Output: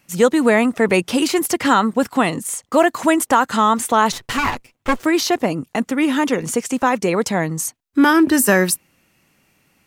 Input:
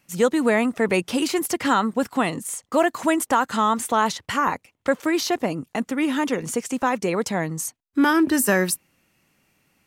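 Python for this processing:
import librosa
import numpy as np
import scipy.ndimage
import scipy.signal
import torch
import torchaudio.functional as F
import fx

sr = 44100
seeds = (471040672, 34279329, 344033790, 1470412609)

y = fx.lower_of_two(x, sr, delay_ms=8.1, at=(4.12, 5.04))
y = y * librosa.db_to_amplitude(5.0)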